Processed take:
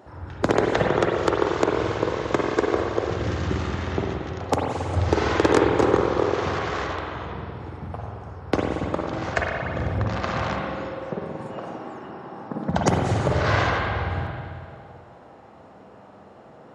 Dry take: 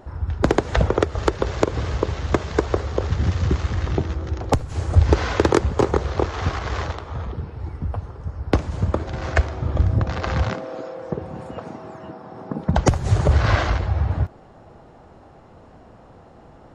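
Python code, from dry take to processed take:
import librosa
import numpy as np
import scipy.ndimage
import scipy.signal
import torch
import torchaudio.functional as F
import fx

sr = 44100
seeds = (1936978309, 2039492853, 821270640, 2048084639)

y = scipy.signal.sosfilt(scipy.signal.butter(2, 100.0, 'highpass', fs=sr, output='sos'), x)
y = fx.low_shelf(y, sr, hz=170.0, db=-7.0)
y = fx.rev_spring(y, sr, rt60_s=2.1, pass_ms=(46, 56), chirp_ms=55, drr_db=-1.5)
y = F.gain(torch.from_numpy(y), -2.0).numpy()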